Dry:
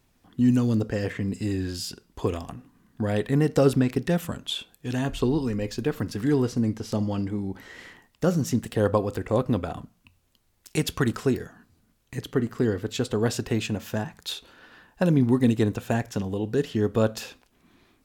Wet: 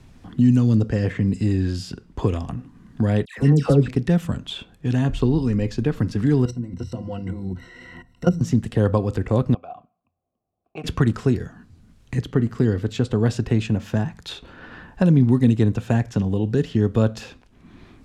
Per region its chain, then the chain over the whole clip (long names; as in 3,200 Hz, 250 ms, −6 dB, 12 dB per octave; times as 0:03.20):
0:03.25–0:03.88: double-tracking delay 14 ms −13 dB + all-pass dispersion lows, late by 127 ms, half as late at 1,300 Hz
0:06.45–0:08.41: output level in coarse steps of 19 dB + EQ curve with evenly spaced ripples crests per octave 2, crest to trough 17 dB
0:09.54–0:10.84: low-pass that shuts in the quiet parts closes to 450 Hz, open at −27 dBFS + formant filter a
whole clip: low-pass filter 8,700 Hz 12 dB per octave; bass and treble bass +9 dB, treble −2 dB; multiband upward and downward compressor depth 40%